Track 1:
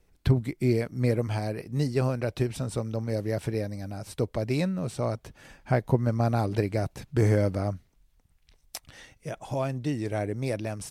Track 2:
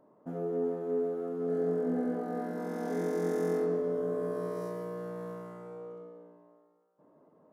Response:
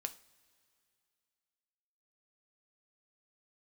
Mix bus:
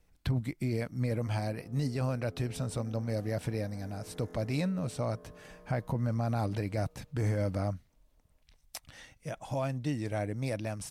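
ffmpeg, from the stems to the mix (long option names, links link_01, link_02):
-filter_complex "[0:a]alimiter=limit=-20dB:level=0:latency=1:release=11,volume=-2.5dB[link_01];[1:a]adelay=900,volume=-17dB[link_02];[link_01][link_02]amix=inputs=2:normalize=0,equalizer=frequency=390:width=3.9:gain=-8"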